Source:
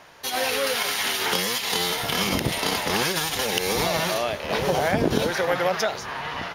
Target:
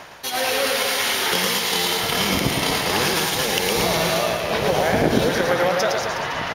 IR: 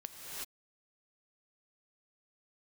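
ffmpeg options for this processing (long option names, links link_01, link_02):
-af "areverse,acompressor=mode=upward:threshold=-25dB:ratio=2.5,areverse,aecho=1:1:110|231|364.1|510.5|671.6:0.631|0.398|0.251|0.158|0.1,volume=1.5dB"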